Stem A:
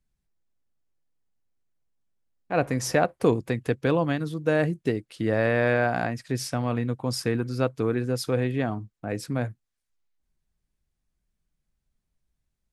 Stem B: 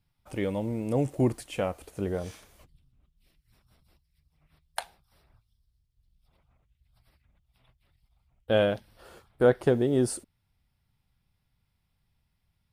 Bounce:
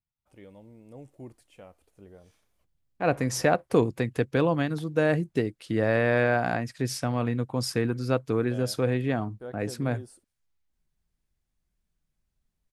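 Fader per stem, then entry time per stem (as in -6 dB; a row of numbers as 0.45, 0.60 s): -0.5, -19.5 dB; 0.50, 0.00 s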